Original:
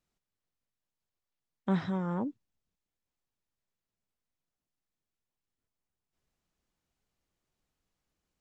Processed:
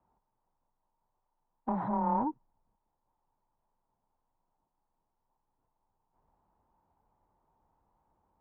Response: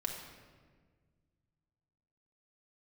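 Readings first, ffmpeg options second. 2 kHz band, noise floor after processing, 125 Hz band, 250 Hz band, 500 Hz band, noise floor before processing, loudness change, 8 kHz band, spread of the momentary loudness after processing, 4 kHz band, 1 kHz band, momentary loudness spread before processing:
-8.5 dB, -83 dBFS, -6.5 dB, -2.0 dB, -0.5 dB, under -85 dBFS, +1.0 dB, no reading, 7 LU, under -20 dB, +10.0 dB, 8 LU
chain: -af "acompressor=threshold=0.0251:ratio=5,afreqshift=18,asoftclip=type=tanh:threshold=0.0126,lowpass=f=910:t=q:w=7.3,volume=2.24"

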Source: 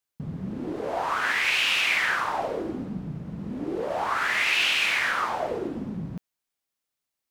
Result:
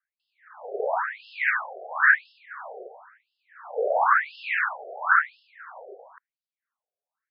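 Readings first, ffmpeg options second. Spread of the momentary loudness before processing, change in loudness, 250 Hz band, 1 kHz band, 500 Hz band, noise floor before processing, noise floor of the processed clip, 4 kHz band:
14 LU, +1.0 dB, under -20 dB, +2.5 dB, +0.5 dB, -85 dBFS, under -85 dBFS, -21.5 dB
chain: -af "highshelf=f=2200:t=q:w=3:g=-11,afftfilt=real='re*between(b*sr/1024,530*pow(3800/530,0.5+0.5*sin(2*PI*0.97*pts/sr))/1.41,530*pow(3800/530,0.5+0.5*sin(2*PI*0.97*pts/sr))*1.41)':imag='im*between(b*sr/1024,530*pow(3800/530,0.5+0.5*sin(2*PI*0.97*pts/sr))/1.41,530*pow(3800/530,0.5+0.5*sin(2*PI*0.97*pts/sr))*1.41)':win_size=1024:overlap=0.75,volume=1.78"

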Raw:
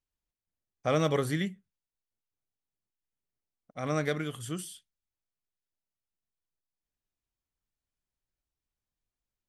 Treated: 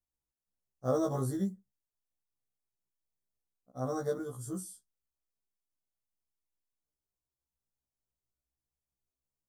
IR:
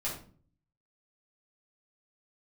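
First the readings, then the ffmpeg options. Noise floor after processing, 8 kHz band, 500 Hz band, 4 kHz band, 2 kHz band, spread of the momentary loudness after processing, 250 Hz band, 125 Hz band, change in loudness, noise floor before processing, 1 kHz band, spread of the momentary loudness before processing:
under -85 dBFS, -3.0 dB, -3.0 dB, -16.0 dB, -16.5 dB, 10 LU, -2.0 dB, -4.0 dB, -3.5 dB, under -85 dBFS, -5.0 dB, 12 LU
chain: -af "acrusher=bits=9:mode=log:mix=0:aa=0.000001,asuperstop=centerf=2500:order=4:qfactor=0.57,afftfilt=real='re*1.73*eq(mod(b,3),0)':imag='im*1.73*eq(mod(b,3),0)':win_size=2048:overlap=0.75"

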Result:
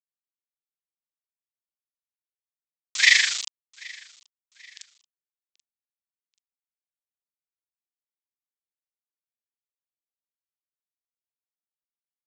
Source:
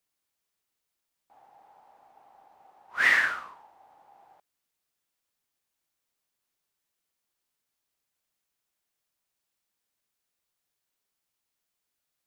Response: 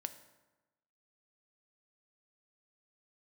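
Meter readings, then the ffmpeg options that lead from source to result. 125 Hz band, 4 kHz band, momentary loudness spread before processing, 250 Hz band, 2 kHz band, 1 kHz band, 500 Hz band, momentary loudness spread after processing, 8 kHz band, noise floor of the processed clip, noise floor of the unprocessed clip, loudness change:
no reading, +16.5 dB, 18 LU, under -10 dB, +2.5 dB, -11.5 dB, under -10 dB, 19 LU, +20.0 dB, under -85 dBFS, -84 dBFS, +6.0 dB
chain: -filter_complex "[0:a]lowpass=4300,aemphasis=mode=production:type=riaa,bandreject=f=2800:w=9.5,bandreject=f=220.3:t=h:w=4,bandreject=f=440.6:t=h:w=4,bandreject=f=660.9:t=h:w=4,bandreject=f=881.2:t=h:w=4,tremolo=f=25:d=0.824,asplit=2[s0][s1];[s1]adelay=1691,volume=0.0794,highshelf=f=4000:g=-38[s2];[s0][s2]amix=inputs=2:normalize=0,aresample=16000,acrusher=bits=6:mix=0:aa=0.000001,aresample=44100,aexciter=amount=13.3:drive=6.6:freq=2200,asplit=2[s3][s4];[s4]aecho=0:1:783|1566:0.0631|0.024[s5];[s3][s5]amix=inputs=2:normalize=0,volume=0.447"

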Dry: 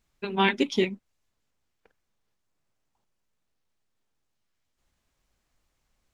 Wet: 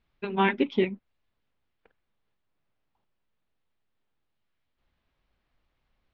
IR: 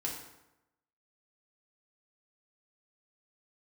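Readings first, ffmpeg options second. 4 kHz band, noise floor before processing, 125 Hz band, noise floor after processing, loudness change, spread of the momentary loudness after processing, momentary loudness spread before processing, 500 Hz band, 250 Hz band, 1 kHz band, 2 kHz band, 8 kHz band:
-7.0 dB, -78 dBFS, 0.0 dB, -79 dBFS, -1.0 dB, 10 LU, 11 LU, 0.0 dB, 0.0 dB, 0.0 dB, -2.0 dB, no reading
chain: -filter_complex "[0:a]lowpass=f=3900:w=0.5412,lowpass=f=3900:w=1.3066,acrossover=split=2700[s0][s1];[s1]acompressor=threshold=0.00398:ratio=6[s2];[s0][s2]amix=inputs=2:normalize=0"

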